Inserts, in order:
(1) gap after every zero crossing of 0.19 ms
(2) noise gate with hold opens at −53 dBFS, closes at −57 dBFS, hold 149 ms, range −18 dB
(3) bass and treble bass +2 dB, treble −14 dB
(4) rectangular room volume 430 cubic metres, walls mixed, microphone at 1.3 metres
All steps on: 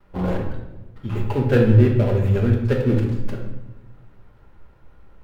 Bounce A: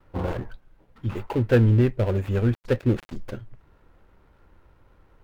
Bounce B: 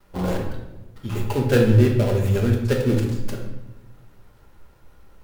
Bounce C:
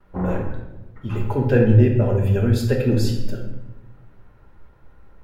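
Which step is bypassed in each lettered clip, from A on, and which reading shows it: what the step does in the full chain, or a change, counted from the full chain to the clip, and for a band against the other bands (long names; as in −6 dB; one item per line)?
4, echo-to-direct ratio 0.0 dB to none audible
3, change in integrated loudness −1.0 LU
1, distortion level −11 dB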